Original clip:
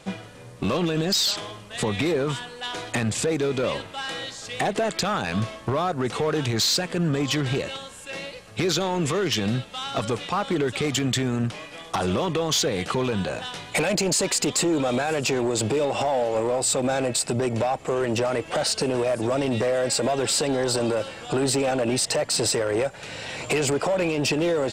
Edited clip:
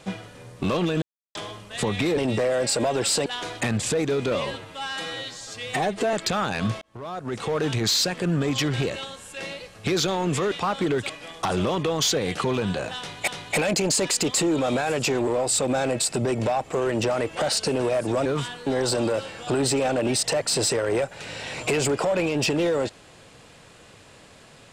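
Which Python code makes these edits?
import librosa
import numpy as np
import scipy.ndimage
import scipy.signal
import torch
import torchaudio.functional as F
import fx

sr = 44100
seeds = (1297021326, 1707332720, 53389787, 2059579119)

y = fx.edit(x, sr, fx.silence(start_s=1.02, length_s=0.33),
    fx.swap(start_s=2.17, length_s=0.41, other_s=19.4, other_length_s=1.09),
    fx.stretch_span(start_s=3.67, length_s=1.19, factor=1.5),
    fx.fade_in_span(start_s=5.54, length_s=0.84),
    fx.cut(start_s=9.24, length_s=0.97),
    fx.cut(start_s=10.79, length_s=0.81),
    fx.repeat(start_s=13.49, length_s=0.29, count=2),
    fx.cut(start_s=15.49, length_s=0.93), tone=tone)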